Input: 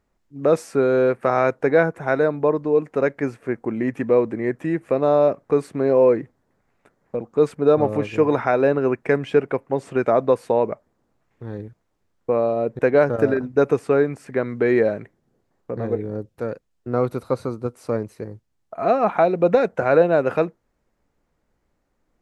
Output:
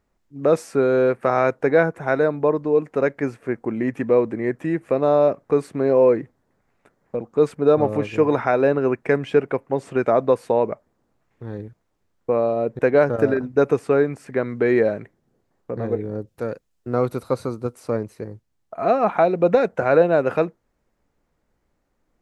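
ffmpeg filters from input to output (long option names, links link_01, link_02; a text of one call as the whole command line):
ffmpeg -i in.wav -filter_complex "[0:a]asettb=1/sr,asplit=3[link_01][link_02][link_03];[link_01]atrim=end=16.274[link_04];[link_02]atrim=start=16.27:end=17.8,asetpts=PTS-STARTPTS,afade=type=in:duration=0.004:curve=qsin,afade=type=out:start_time=1.526:duration=0.004:curve=qsin,highshelf=frequency=3900:gain=5[link_05];[link_03]atrim=start=17.796[link_06];[link_04][link_05]acrossfade=duration=0.004:curve1=hsin:curve2=qsin[link_07];[link_07][link_06]acrossfade=duration=0.004:curve1=qsin:curve2=hsin" out.wav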